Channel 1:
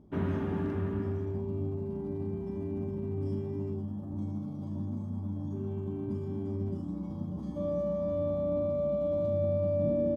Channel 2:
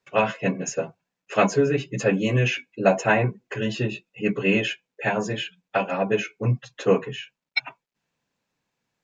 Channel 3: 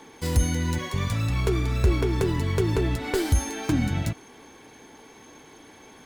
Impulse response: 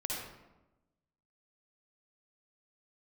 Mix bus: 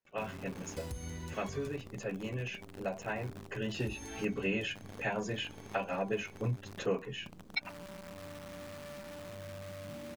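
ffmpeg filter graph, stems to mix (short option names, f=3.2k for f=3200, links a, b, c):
-filter_complex "[0:a]equalizer=f=510:w=1.2:g=-3,acrusher=bits=6:dc=4:mix=0:aa=0.000001,adelay=50,volume=-13.5dB[a];[1:a]volume=-6dB,afade=t=in:st=3.25:d=0.55:silence=0.334965,asplit=2[b][c];[2:a]acompressor=threshold=-35dB:ratio=1.5,adelay=550,volume=-5dB,asplit=3[d][e][f];[d]atrim=end=1.68,asetpts=PTS-STARTPTS,afade=t=out:st=1.676:d=0.004:c=hsin[g];[e]atrim=start=1.68:end=3.8,asetpts=PTS-STARTPTS,volume=0[h];[f]atrim=start=3.8,asetpts=PTS-STARTPTS,afade=t=in:d=0.004:c=hsin[i];[g][h][i]concat=n=3:v=0:a=1,asplit=2[j][k];[k]volume=-20dB[l];[c]apad=whole_len=291412[m];[j][m]sidechaincompress=threshold=-33dB:ratio=8:attack=16:release=732[n];[a][n]amix=inputs=2:normalize=0,acompressor=threshold=-41dB:ratio=6,volume=0dB[o];[3:a]atrim=start_sample=2205[p];[l][p]afir=irnorm=-1:irlink=0[q];[b][o][q]amix=inputs=3:normalize=0,acompressor=threshold=-34dB:ratio=2"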